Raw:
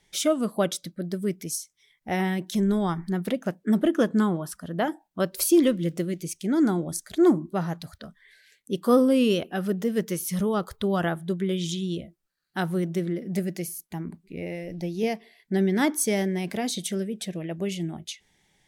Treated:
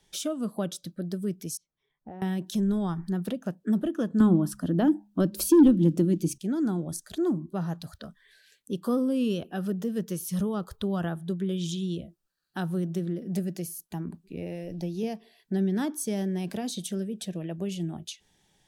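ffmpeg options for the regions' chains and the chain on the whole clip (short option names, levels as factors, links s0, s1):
-filter_complex "[0:a]asettb=1/sr,asplit=3[s0][s1][s2];[s0]atrim=end=1.574[s3];[s1]atrim=start=1.57:end=2.22,asetpts=PTS-STARTPTS,afade=t=in:d=0.004:c=qsin,afade=t=out:st=0.646:d=0.004:c=qsin,lowpass=1200,acompressor=threshold=0.0126:ratio=16:attack=3.2:release=140:knee=1:detection=peak[s4];[s2]atrim=start=2.216[s5];[s3][s4]acrossfade=d=0.004:c1=hsin:c2=qsin[s6];[s6][s5]acrossfade=d=0.004:c1=qsin:c2=hsin,asettb=1/sr,asplit=3[s7][s8][s9];[s7]atrim=end=4.204[s10];[s8]atrim=start=4.2:end=6.38,asetpts=PTS-STARTPTS,afade=t=in:d=0.004:c=qsin,afade=t=out:st=2.176:d=0.004:c=qsin,equalizer=f=300:t=o:w=0.46:g=13.5,acontrast=82,bandreject=f=68.64:t=h:w=4,bandreject=f=137.28:t=h:w=4,bandreject=f=205.92:t=h:w=4[s11];[s9]atrim=start=6.376[s12];[s10][s11]acrossfade=d=0.004:c1=hsin:c2=qsin[s13];[s13][s12]acrossfade=d=0.004:c1=qsin:c2=hsin,equalizer=f=2100:t=o:w=0.22:g=-13,acrossover=split=220[s14][s15];[s15]acompressor=threshold=0.0141:ratio=2[s16];[s14][s16]amix=inputs=2:normalize=0"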